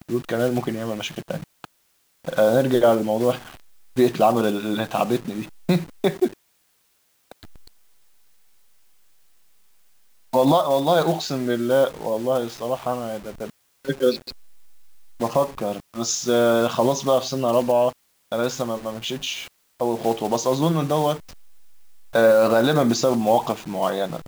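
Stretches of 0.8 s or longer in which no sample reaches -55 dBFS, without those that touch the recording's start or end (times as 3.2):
6.33–7.31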